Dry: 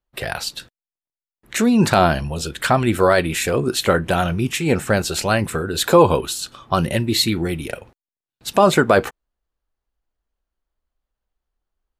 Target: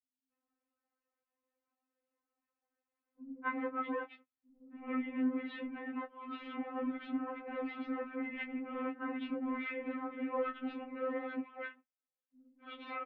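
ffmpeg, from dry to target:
ffmpeg -i in.wav -filter_complex "[0:a]areverse,lowshelf=frequency=420:gain=6.5,acompressor=threshold=-25dB:ratio=12,alimiter=limit=-21dB:level=0:latency=1:release=87,flanger=delay=4.6:depth=2.8:regen=63:speed=0.61:shape=triangular,aeval=exprs='clip(val(0),-1,0.0112)':channel_layout=same,asplit=2[link_01][link_02];[link_02]adelay=19,volume=-10dB[link_03];[link_01][link_03]amix=inputs=2:normalize=0,acrossover=split=320[link_04][link_05];[link_05]adelay=250[link_06];[link_04][link_06]amix=inputs=2:normalize=0,asetrate=40517,aresample=44100,highpass=frequency=220:width_type=q:width=0.5412,highpass=frequency=220:width_type=q:width=1.307,lowpass=frequency=2500:width_type=q:width=0.5176,lowpass=frequency=2500:width_type=q:width=0.7071,lowpass=frequency=2500:width_type=q:width=1.932,afreqshift=-69,afftfilt=real='re*3.46*eq(mod(b,12),0)':imag='im*3.46*eq(mod(b,12),0)':win_size=2048:overlap=0.75,volume=5dB" out.wav

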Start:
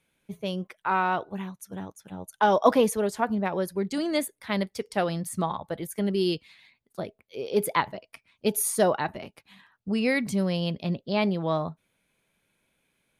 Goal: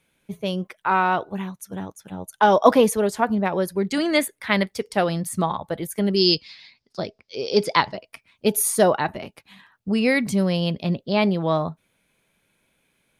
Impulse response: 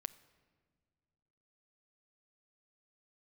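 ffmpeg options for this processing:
-filter_complex "[0:a]asettb=1/sr,asplit=3[link_01][link_02][link_03];[link_01]atrim=end=3.904[link_04];[link_02]atrim=start=3.9:end=4.72,asetpts=PTS-STARTPTS,afade=type=in:duration=0.004:curve=qsin,afade=type=out:start_time=0.816:duration=0.004:curve=qsin,equalizer=frequency=1900:width_type=o:width=1.6:gain=6.5[link_05];[link_03]atrim=start=4.716[link_06];[link_04][link_05]acrossfade=duration=0.004:curve1=hsin:curve2=qsin[link_07];[link_07][link_06]acrossfade=duration=0.004:curve1=qsin:curve2=hsin,asettb=1/sr,asplit=3[link_08][link_09][link_10];[link_08]atrim=end=6.164[link_11];[link_09]atrim=start=6.16:end=7.96,asetpts=PTS-STARTPTS,afade=type=in:duration=0.004:curve=qsin,afade=type=out:start_time=1.796:duration=0.004:curve=qsin,lowpass=frequency=5100:width_type=q:width=7.5[link_12];[link_10]atrim=start=7.956[link_13];[link_11][link_12]acrossfade=duration=0.004:curve1=hsin:curve2=qsin[link_14];[link_14][link_13]acrossfade=duration=0.004:curve1=qsin:curve2=hsin,volume=5dB"

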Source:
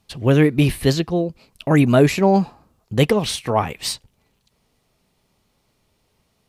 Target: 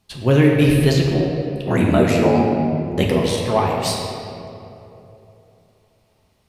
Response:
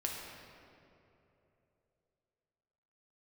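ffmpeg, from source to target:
-filter_complex "[0:a]asplit=3[link_01][link_02][link_03];[link_01]afade=type=out:start_time=1.06:duration=0.02[link_04];[link_02]aeval=exprs='val(0)*sin(2*PI*40*n/s)':channel_layout=same,afade=type=in:start_time=1.06:duration=0.02,afade=type=out:start_time=3.36:duration=0.02[link_05];[link_03]afade=type=in:start_time=3.36:duration=0.02[link_06];[link_04][link_05][link_06]amix=inputs=3:normalize=0[link_07];[1:a]atrim=start_sample=2205[link_08];[link_07][link_08]afir=irnorm=-1:irlink=0"

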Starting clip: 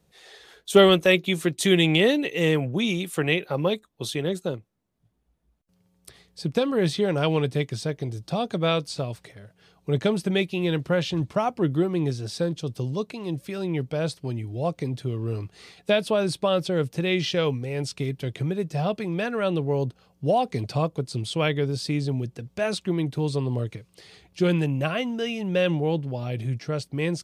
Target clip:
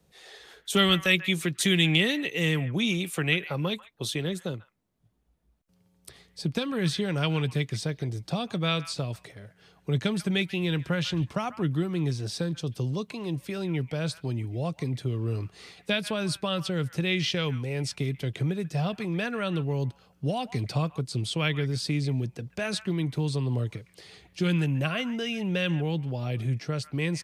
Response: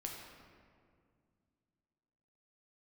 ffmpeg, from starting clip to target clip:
-filter_complex "[0:a]acrossover=split=240|1200|2500[link_01][link_02][link_03][link_04];[link_02]acompressor=threshold=-34dB:ratio=6[link_05];[link_03]aecho=1:1:140:0.316[link_06];[link_01][link_05][link_06][link_04]amix=inputs=4:normalize=0"

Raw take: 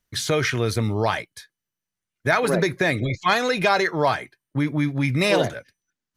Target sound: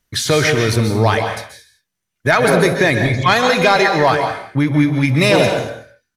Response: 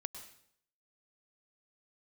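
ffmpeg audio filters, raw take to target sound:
-filter_complex "[0:a]acontrast=77,aecho=1:1:65|125|139|165:0.106|0.1|0.188|0.133[link_01];[1:a]atrim=start_sample=2205,afade=type=out:start_time=0.24:duration=0.01,atrim=end_sample=11025,asetrate=34398,aresample=44100[link_02];[link_01][link_02]afir=irnorm=-1:irlink=0,volume=2dB"

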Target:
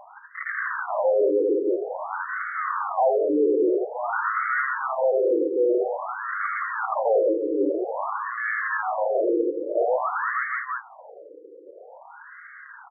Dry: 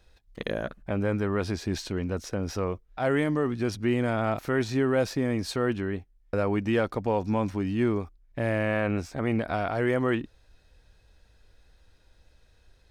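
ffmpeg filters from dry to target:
ffmpeg -i in.wav -filter_complex "[0:a]aecho=1:1:80|180|305|461.2|656.6:0.631|0.398|0.251|0.158|0.1,acrossover=split=310[link_01][link_02];[link_01]asoftclip=type=tanh:threshold=-30.5dB[link_03];[link_03][link_02]amix=inputs=2:normalize=0,asplit=2[link_04][link_05];[link_05]highpass=frequency=720:poles=1,volume=38dB,asoftclip=type=tanh:threshold=-12.5dB[link_06];[link_04][link_06]amix=inputs=2:normalize=0,lowpass=frequency=1500:poles=1,volume=-6dB,afftfilt=real='re*between(b*sr/1024,370*pow(1600/370,0.5+0.5*sin(2*PI*0.5*pts/sr))/1.41,370*pow(1600/370,0.5+0.5*sin(2*PI*0.5*pts/sr))*1.41)':imag='im*between(b*sr/1024,370*pow(1600/370,0.5+0.5*sin(2*PI*0.5*pts/sr))/1.41,370*pow(1600/370,0.5+0.5*sin(2*PI*0.5*pts/sr))*1.41)':win_size=1024:overlap=0.75,volume=1.5dB" out.wav

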